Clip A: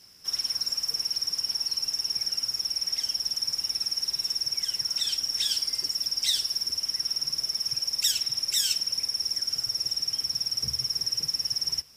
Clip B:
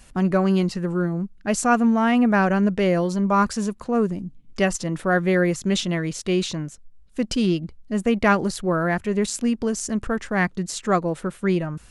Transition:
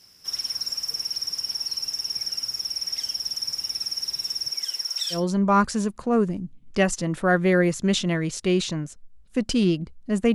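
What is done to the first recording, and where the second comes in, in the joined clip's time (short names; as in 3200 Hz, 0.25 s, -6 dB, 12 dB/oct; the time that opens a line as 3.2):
clip A
4.5–5.24 HPF 230 Hz -> 1000 Hz
5.17 switch to clip B from 2.99 s, crossfade 0.14 s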